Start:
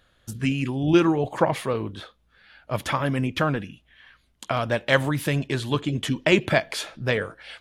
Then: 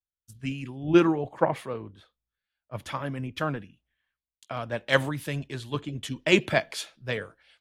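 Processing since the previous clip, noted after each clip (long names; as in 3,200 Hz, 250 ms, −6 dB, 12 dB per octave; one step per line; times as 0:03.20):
multiband upward and downward expander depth 100%
level −7 dB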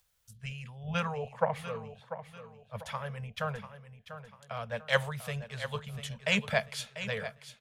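elliptic band-stop filter 220–440 Hz
on a send: repeating echo 693 ms, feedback 37%, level −11.5 dB
on the sum: upward compression, threshold −50 dBFS
level −4 dB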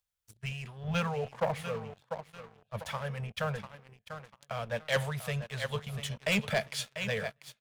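dynamic equaliser 1,100 Hz, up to −4 dB, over −45 dBFS, Q 2
leveller curve on the samples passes 3
level −8.5 dB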